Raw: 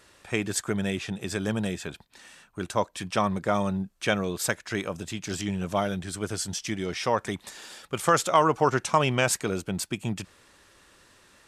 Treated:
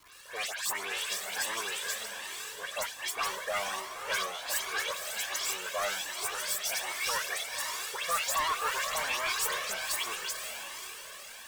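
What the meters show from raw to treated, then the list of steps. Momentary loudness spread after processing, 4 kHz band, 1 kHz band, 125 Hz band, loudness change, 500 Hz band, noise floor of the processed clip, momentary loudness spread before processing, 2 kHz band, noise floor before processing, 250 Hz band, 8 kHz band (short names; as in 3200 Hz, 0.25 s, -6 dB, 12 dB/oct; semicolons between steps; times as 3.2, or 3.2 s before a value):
8 LU, +2.5 dB, -6.5 dB, -28.5 dB, -4.5 dB, -12.0 dB, -46 dBFS, 13 LU, 0.0 dB, -59 dBFS, -26.5 dB, +0.5 dB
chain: minimum comb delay 1.8 ms; HPF 1000 Hz 12 dB/oct; high shelf 10000 Hz +7 dB; in parallel at -3 dB: negative-ratio compressor -36 dBFS; on the sum: dispersion highs, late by 0.124 s, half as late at 2500 Hz; soft clip -26 dBFS, distortion -11 dB; crackle 460/s -45 dBFS; diffused feedback echo 0.527 s, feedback 51%, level -6 dB; cascading flanger rising 1.3 Hz; gain +4 dB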